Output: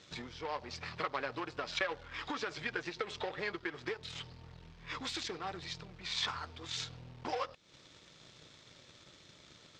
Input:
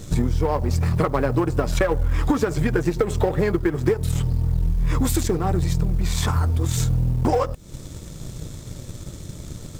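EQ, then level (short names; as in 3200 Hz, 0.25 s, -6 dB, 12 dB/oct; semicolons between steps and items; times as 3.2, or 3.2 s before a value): band-pass 3500 Hz, Q 0.77; air absorption 170 m; dynamic EQ 4400 Hz, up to +6 dB, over -53 dBFS, Q 0.87; -3.0 dB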